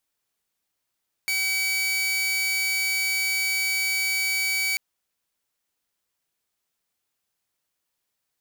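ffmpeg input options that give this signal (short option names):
-f lavfi -i "aevalsrc='0.1*(2*mod(2280*t,1)-1)':d=3.49:s=44100"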